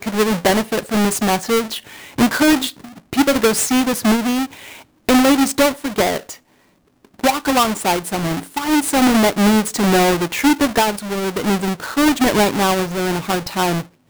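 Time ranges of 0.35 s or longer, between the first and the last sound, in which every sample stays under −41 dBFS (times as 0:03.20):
0:06.37–0:07.05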